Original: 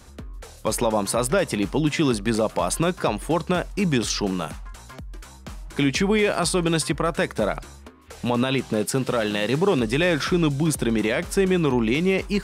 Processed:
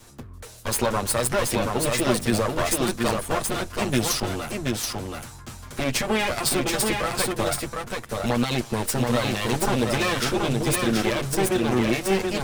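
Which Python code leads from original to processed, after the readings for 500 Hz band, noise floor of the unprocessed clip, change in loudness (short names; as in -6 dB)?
-2.5 dB, -44 dBFS, -1.5 dB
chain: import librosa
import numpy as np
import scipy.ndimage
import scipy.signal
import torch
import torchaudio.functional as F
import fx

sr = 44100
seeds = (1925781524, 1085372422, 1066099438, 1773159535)

p1 = fx.lower_of_two(x, sr, delay_ms=8.5)
p2 = fx.high_shelf(p1, sr, hz=6600.0, db=6.0)
y = p2 + fx.echo_single(p2, sr, ms=728, db=-3.5, dry=0)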